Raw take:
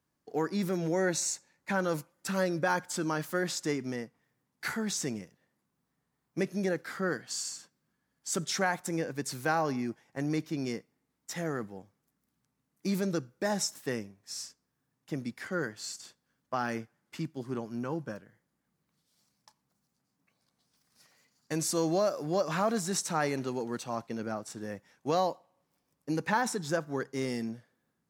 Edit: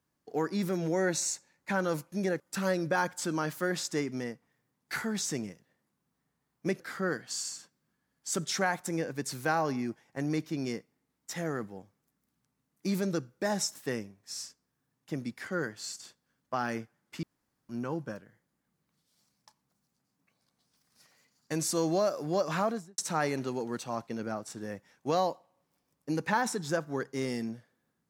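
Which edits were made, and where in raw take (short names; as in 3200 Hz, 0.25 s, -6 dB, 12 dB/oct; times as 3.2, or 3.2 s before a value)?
6.52–6.8 move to 2.12
17.23–17.69 room tone
22.58–22.98 studio fade out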